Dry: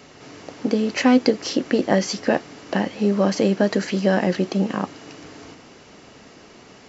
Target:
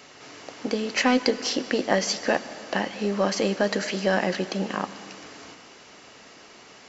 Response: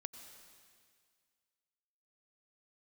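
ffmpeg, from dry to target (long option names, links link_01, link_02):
-filter_complex "[0:a]lowshelf=frequency=450:gain=-11.5,aeval=exprs='0.75*(cos(1*acos(clip(val(0)/0.75,-1,1)))-cos(1*PI/2))+0.0075*(cos(6*acos(clip(val(0)/0.75,-1,1)))-cos(6*PI/2))':channel_layout=same,asplit=2[link_01][link_02];[1:a]atrim=start_sample=2205[link_03];[link_02][link_03]afir=irnorm=-1:irlink=0,volume=1.5dB[link_04];[link_01][link_04]amix=inputs=2:normalize=0,volume=-3.5dB"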